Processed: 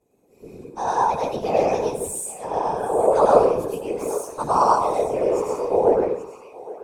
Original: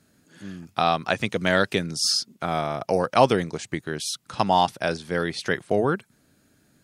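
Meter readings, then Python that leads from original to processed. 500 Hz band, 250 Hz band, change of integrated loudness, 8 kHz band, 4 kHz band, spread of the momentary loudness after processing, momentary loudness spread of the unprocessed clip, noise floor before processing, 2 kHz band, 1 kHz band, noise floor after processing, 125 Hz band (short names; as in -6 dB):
+6.0 dB, -1.5 dB, +3.0 dB, -0.5 dB, under -15 dB, 12 LU, 10 LU, -63 dBFS, -10.5 dB, +4.0 dB, -57 dBFS, -6.5 dB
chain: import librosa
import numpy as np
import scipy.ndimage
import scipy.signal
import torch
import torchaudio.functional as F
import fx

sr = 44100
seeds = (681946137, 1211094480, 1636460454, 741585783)

p1 = fx.partial_stretch(x, sr, pct=117)
p2 = fx.notch(p1, sr, hz=5100.0, q=16.0)
p3 = fx.rev_plate(p2, sr, seeds[0], rt60_s=0.68, hf_ratio=0.6, predelay_ms=85, drr_db=-4.0)
p4 = np.clip(p3, -10.0 ** (-22.0 / 20.0), 10.0 ** (-22.0 / 20.0))
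p5 = p3 + F.gain(torch.from_numpy(p4), -6.0).numpy()
p6 = fx.rider(p5, sr, range_db=10, speed_s=2.0)
p7 = fx.curve_eq(p6, sr, hz=(180.0, 990.0, 1900.0, 8400.0), db=(0, 10, -10, 6))
p8 = p7 + fx.echo_thinned(p7, sr, ms=822, feedback_pct=26, hz=690.0, wet_db=-15, dry=0)
p9 = fx.whisperise(p8, sr, seeds[1])
p10 = scipy.signal.sosfilt(scipy.signal.butter(2, 12000.0, 'lowpass', fs=sr, output='sos'), p9)
p11 = fx.small_body(p10, sr, hz=(450.0, 2500.0), ring_ms=20, db=13)
p12 = fx.spec_repair(p11, sr, seeds[2], start_s=5.27, length_s=0.49, low_hz=1500.0, high_hz=4400.0, source='both')
y = F.gain(torch.from_numpy(p12), -13.5).numpy()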